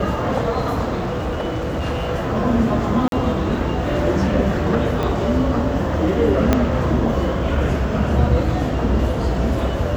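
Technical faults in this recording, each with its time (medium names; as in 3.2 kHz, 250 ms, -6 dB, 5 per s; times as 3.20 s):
0.96–2.09 s: clipped -19 dBFS
3.08–3.12 s: dropout 42 ms
5.03 s: pop -12 dBFS
6.53 s: pop -2 dBFS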